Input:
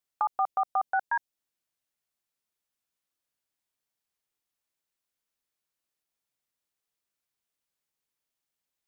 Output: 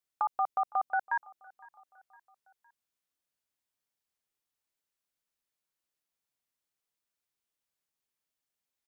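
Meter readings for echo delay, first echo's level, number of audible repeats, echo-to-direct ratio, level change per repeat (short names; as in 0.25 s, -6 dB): 0.51 s, -24.0 dB, 2, -23.0 dB, -6.0 dB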